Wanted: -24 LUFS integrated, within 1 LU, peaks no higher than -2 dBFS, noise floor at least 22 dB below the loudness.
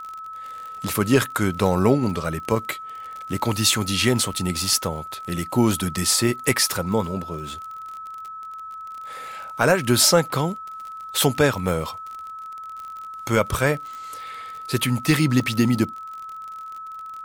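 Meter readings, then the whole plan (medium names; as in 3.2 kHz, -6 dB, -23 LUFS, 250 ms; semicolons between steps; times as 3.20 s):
tick rate 39 per s; steady tone 1.3 kHz; tone level -33 dBFS; loudness -21.5 LUFS; peak level -4.0 dBFS; loudness target -24.0 LUFS
-> de-click; band-stop 1.3 kHz, Q 30; trim -2.5 dB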